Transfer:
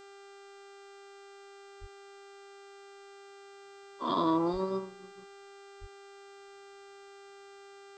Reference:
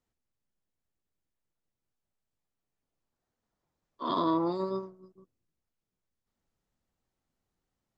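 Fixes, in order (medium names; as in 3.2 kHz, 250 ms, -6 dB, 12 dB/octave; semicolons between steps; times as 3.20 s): de-hum 397.3 Hz, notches 21; band-stop 1.4 kHz, Q 30; 1.80–1.92 s: high-pass 140 Hz 24 dB/octave; 4.52–4.64 s: high-pass 140 Hz 24 dB/octave; 5.80–5.92 s: high-pass 140 Hz 24 dB/octave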